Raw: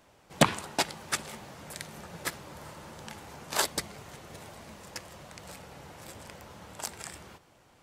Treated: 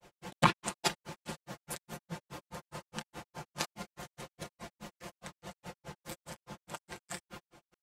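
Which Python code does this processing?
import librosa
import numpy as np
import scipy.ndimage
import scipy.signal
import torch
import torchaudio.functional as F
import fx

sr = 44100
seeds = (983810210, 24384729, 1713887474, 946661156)

y = x + 0.65 * np.pad(x, (int(5.7 * sr / 1000.0), 0))[:len(x)]
y = fx.granulator(y, sr, seeds[0], grain_ms=121.0, per_s=4.8, spray_ms=100.0, spread_st=0)
y = F.gain(torch.from_numpy(y), 3.5).numpy()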